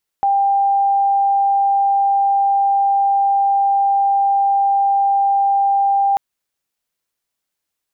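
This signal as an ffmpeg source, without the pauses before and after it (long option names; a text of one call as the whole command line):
ffmpeg -f lavfi -i "sine=frequency=794:duration=5.94:sample_rate=44100,volume=6.06dB" out.wav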